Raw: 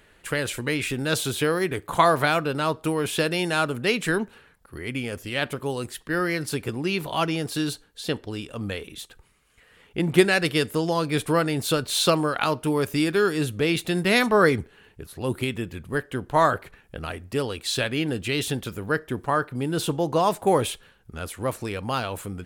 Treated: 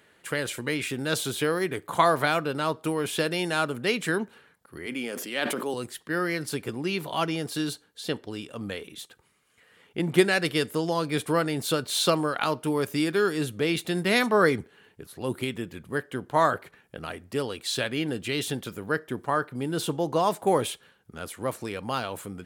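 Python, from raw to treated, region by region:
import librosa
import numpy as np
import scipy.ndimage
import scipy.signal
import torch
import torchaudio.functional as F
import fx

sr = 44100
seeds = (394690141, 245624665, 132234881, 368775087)

y = fx.chain(x, sr, fx.highpass(hz=200.0, slope=24),
    fx.sustainer(db_per_s=28.0), at=(4.86, 5.74))
y = scipy.signal.sosfilt(scipy.signal.butter(2, 130.0, 'highpass', fs=sr, output='sos'), y)
y = fx.notch(y, sr, hz=2600.0, q=23.0)
y = y * librosa.db_to_amplitude(-2.5)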